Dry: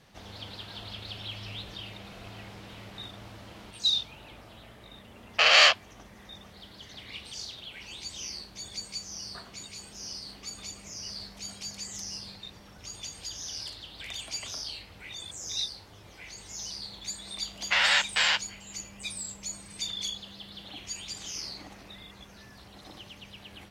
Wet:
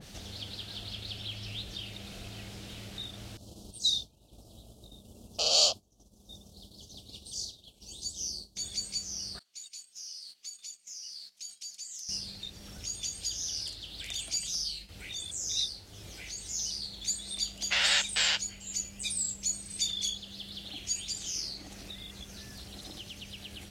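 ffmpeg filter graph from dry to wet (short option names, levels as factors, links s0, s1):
-filter_complex "[0:a]asettb=1/sr,asplit=3[s0][s1][s2];[s0]atrim=end=3.374[s3];[s1]atrim=start=3.37:end=8.57,asetpts=PTS-STARTPTS,afade=t=in:d=0.004:c=qsin,afade=t=out:st=5.196:d=0.004:c=qsin,asuperstop=centerf=1900:order=4:qfactor=0.56,agate=range=0.0224:threshold=0.00708:ratio=3:release=100:detection=peak[s4];[s2]atrim=start=8.566[s5];[s3][s4]acrossfade=d=0.004:c1=hsin:c2=qsin[s6];[s6][s5]acrossfade=d=0.004:c1=qsin:c2=hsin,asettb=1/sr,asplit=3[s7][s8][s9];[s7]atrim=end=9.394[s10];[s8]atrim=start=9.39:end=12.09,asetpts=PTS-STARTPTS,afade=t=in:d=0.004:c=qsin,afade=t=out:st=2.696:d=0.004:c=qsin,agate=range=0.2:threshold=0.00501:ratio=16:release=100:detection=peak,lowpass=f=2600:p=1,aderivative[s11];[s9]atrim=start=12.086[s12];[s10][s11]acrossfade=d=0.004:c1=hsin:c2=qsin[s13];[s13][s12]acrossfade=d=0.004:c1=qsin:c2=hsin,asettb=1/sr,asplit=3[s14][s15][s16];[s14]atrim=end=14.364[s17];[s15]atrim=start=14.36:end=14.89,asetpts=PTS-STARTPTS,afade=t=in:d=0.004:c=qsin,afade=t=out:st=0.526:d=0.004:c=qsin,agate=range=0.0224:threshold=0.00562:ratio=3:release=100:detection=peak,aecho=1:1:5.6:0.9,atrim=end_sample=23373,acrossover=split=220|3000[s18][s19][s20];[s19]acompressor=threshold=0.00112:ratio=2:attack=3.2:release=140:knee=2.83:detection=peak[s21];[s18][s21][s20]amix=inputs=3:normalize=0[s22];[s16]atrim=start=14.886[s23];[s17][s22]acrossfade=d=0.004:c1=hsin:c2=qsin[s24];[s24][s23]acrossfade=d=0.004:c1=qsin:c2=hsin,equalizer=f=125:t=o:w=1:g=-4,equalizer=f=250:t=o:w=1:g=-3,equalizer=f=500:t=o:w=1:g=-4,equalizer=f=1000:t=o:w=1:g=-12,equalizer=f=2000:t=o:w=1:g=-6,equalizer=f=8000:t=o:w=1:g=4,acompressor=mode=upward:threshold=0.00794:ratio=2.5,adynamicequalizer=threshold=0.00501:dfrequency=2200:dqfactor=0.7:tfrequency=2200:tqfactor=0.7:attack=5:release=100:ratio=0.375:range=2:mode=cutabove:tftype=highshelf,volume=1.5"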